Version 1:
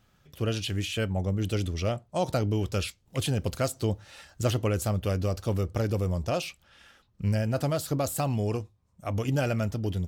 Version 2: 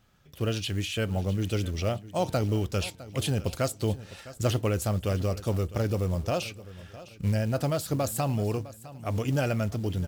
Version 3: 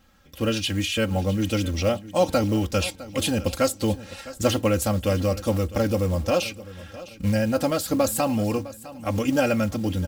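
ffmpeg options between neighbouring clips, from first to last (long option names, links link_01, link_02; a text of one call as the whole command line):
ffmpeg -i in.wav -af "acrusher=bits=7:mode=log:mix=0:aa=0.000001,aecho=1:1:657|1314|1971:0.141|0.0523|0.0193" out.wav
ffmpeg -i in.wav -af "aecho=1:1:3.7:0.79,volume=4.5dB" out.wav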